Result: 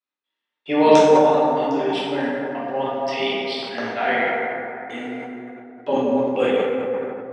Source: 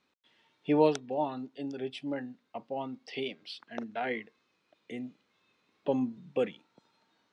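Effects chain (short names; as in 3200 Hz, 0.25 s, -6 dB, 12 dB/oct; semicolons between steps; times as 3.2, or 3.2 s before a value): octaver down 1 oct, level -3 dB; weighting filter A; gate -58 dBFS, range -29 dB; low shelf 67 Hz -10.5 dB; plate-style reverb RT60 3.3 s, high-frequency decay 0.35×, DRR -9 dB; sustainer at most 37 dB/s; gain +6.5 dB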